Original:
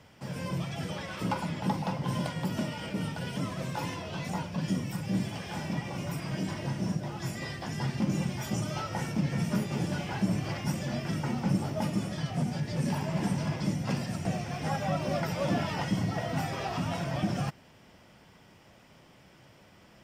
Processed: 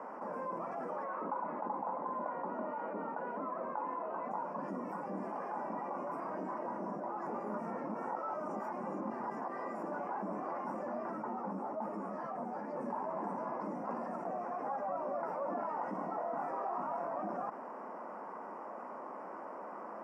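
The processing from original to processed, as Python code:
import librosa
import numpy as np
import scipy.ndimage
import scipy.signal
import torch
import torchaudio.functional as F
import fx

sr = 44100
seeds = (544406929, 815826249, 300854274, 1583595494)

y = fx.bandpass_edges(x, sr, low_hz=160.0, high_hz=3000.0, at=(1.04, 4.31))
y = fx.ensemble(y, sr, at=(11.09, 12.72), fade=0.02)
y = fx.doubler(y, sr, ms=25.0, db=-4, at=(15.96, 17.08))
y = fx.edit(y, sr, fx.reverse_span(start_s=7.27, length_s=2.56), tone=tone)
y = scipy.signal.sosfilt(scipy.signal.ellip(3, 1.0, 50, [220.0, 1100.0], 'bandpass', fs=sr, output='sos'), y)
y = np.diff(y, prepend=0.0)
y = fx.env_flatten(y, sr, amount_pct=70)
y = y * 10.0 ** (12.5 / 20.0)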